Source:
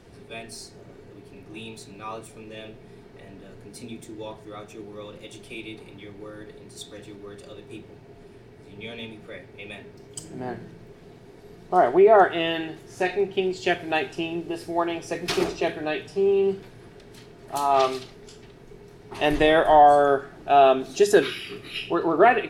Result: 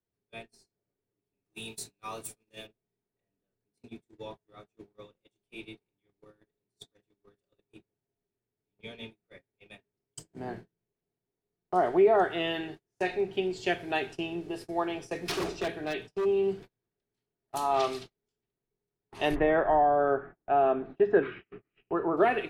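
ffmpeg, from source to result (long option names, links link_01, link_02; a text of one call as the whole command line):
ffmpeg -i in.wav -filter_complex "[0:a]asettb=1/sr,asplit=3[link_01][link_02][link_03];[link_01]atrim=end=1.454[link_04];[link_02]atrim=start=1.45:end=2.67,asetpts=PTS-STARTPTS,afade=type=in:duration=0.004:curve=qsin,afade=type=out:start_time=1.216:duration=0.004:curve=qsin,aemphasis=mode=production:type=75kf[link_05];[link_03]atrim=start=2.666[link_06];[link_04][link_05]acrossfade=duration=0.004:curve1=hsin:curve2=qsin[link_07];[link_07][link_06]acrossfade=duration=0.004:curve1=qsin:curve2=hsin,asplit=3[link_08][link_09][link_10];[link_08]afade=type=out:start_time=15.18:duration=0.02[link_11];[link_09]aeval=exprs='0.112*(abs(mod(val(0)/0.112+3,4)-2)-1)':channel_layout=same,afade=type=in:start_time=15.18:duration=0.02,afade=type=out:start_time=16.24:duration=0.02[link_12];[link_10]afade=type=in:start_time=16.24:duration=0.02[link_13];[link_11][link_12][link_13]amix=inputs=3:normalize=0,asplit=3[link_14][link_15][link_16];[link_14]afade=type=out:start_time=19.34:duration=0.02[link_17];[link_15]lowpass=frequency=2000:width=0.5412,lowpass=frequency=2000:width=1.3066,afade=type=in:start_time=19.34:duration=0.02,afade=type=out:start_time=22.16:duration=0.02[link_18];[link_16]afade=type=in:start_time=22.16:duration=0.02[link_19];[link_17][link_18][link_19]amix=inputs=3:normalize=0,agate=range=-36dB:threshold=-36dB:ratio=16:detection=peak,acrossover=split=440|3000[link_20][link_21][link_22];[link_21]acompressor=threshold=-17dB:ratio=6[link_23];[link_20][link_23][link_22]amix=inputs=3:normalize=0,volume=-5.5dB" out.wav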